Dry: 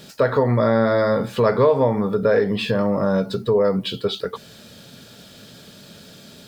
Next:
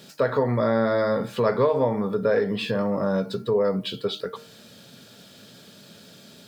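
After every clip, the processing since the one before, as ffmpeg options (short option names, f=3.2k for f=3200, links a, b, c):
-af "highpass=110,bandreject=f=153.3:t=h:w=4,bandreject=f=306.6:t=h:w=4,bandreject=f=459.9:t=h:w=4,bandreject=f=613.2:t=h:w=4,bandreject=f=766.5:t=h:w=4,bandreject=f=919.8:t=h:w=4,bandreject=f=1.0731k:t=h:w=4,bandreject=f=1.2264k:t=h:w=4,bandreject=f=1.3797k:t=h:w=4,bandreject=f=1.533k:t=h:w=4,bandreject=f=1.6863k:t=h:w=4,bandreject=f=1.8396k:t=h:w=4,bandreject=f=1.9929k:t=h:w=4,bandreject=f=2.1462k:t=h:w=4,bandreject=f=2.2995k:t=h:w=4,bandreject=f=2.4528k:t=h:w=4,volume=-4dB"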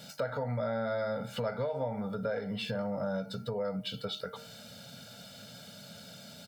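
-af "aecho=1:1:1.4:0.93,acompressor=threshold=-32dB:ratio=2.5,volume=-3.5dB"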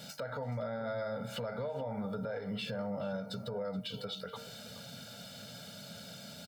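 -filter_complex "[0:a]alimiter=level_in=7dB:limit=-24dB:level=0:latency=1:release=141,volume=-7dB,asplit=2[a][b];[b]adelay=425.7,volume=-14dB,highshelf=f=4k:g=-9.58[c];[a][c]amix=inputs=2:normalize=0,volume=1dB"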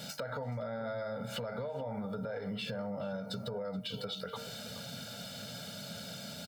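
-af "acompressor=threshold=-39dB:ratio=6,volume=4dB"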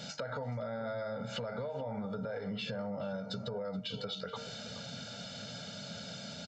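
-af "aresample=16000,aresample=44100"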